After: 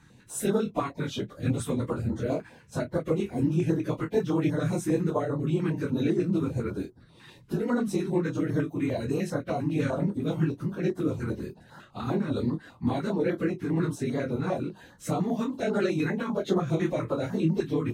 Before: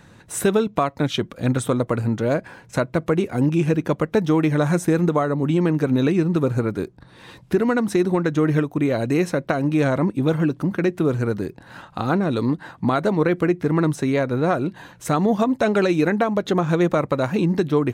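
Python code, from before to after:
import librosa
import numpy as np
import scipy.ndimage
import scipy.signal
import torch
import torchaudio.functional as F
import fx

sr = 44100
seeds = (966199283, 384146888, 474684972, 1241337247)

y = fx.phase_scramble(x, sr, seeds[0], window_ms=50)
y = fx.doubler(y, sr, ms=25.0, db=-7.5)
y = fx.filter_held_notch(y, sr, hz=10.0, low_hz=580.0, high_hz=2500.0)
y = y * librosa.db_to_amplitude(-7.5)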